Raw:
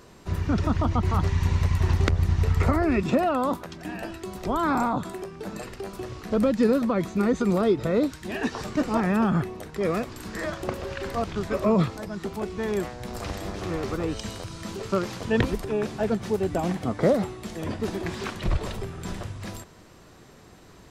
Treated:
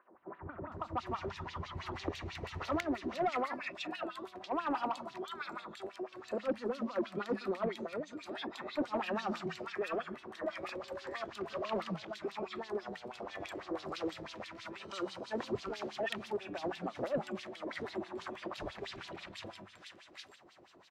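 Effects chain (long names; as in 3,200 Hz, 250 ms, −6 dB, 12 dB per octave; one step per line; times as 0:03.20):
parametric band 440 Hz −12.5 dB 0.2 octaves
three-band delay without the direct sound mids, lows, highs 140/720 ms, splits 210/1,500 Hz
convolution reverb RT60 2.5 s, pre-delay 3 ms, DRR 20 dB
auto-filter band-pass sine 6.1 Hz 360–4,000 Hz
0:05.87–0:06.31: low-shelf EQ 150 Hz −9.5 dB
0:07.83–0:08.48: downward compressor 3 to 1, threshold −39 dBFS, peak gain reduction 8.5 dB
soft clipping −27 dBFS, distortion −16 dB
level +1.5 dB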